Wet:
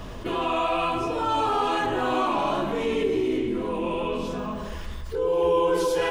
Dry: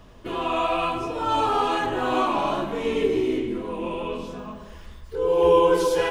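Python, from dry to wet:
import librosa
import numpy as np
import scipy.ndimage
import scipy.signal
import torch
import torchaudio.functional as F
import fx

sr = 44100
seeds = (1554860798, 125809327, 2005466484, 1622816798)

y = fx.env_flatten(x, sr, amount_pct=50)
y = y * 10.0 ** (-5.5 / 20.0)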